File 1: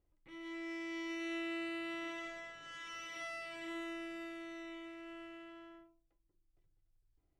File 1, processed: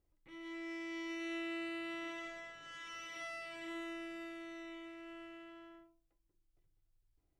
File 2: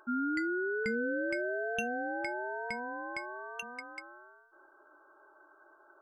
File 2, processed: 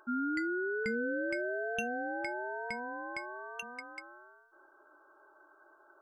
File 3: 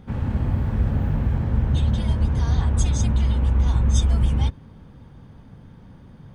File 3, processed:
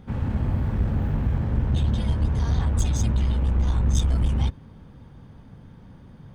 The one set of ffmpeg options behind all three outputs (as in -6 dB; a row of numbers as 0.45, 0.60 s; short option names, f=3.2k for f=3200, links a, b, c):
-af "aeval=exprs='clip(val(0),-1,0.106)':c=same,volume=-1dB"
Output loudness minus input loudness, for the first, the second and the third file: -1.0, -1.0, -2.5 LU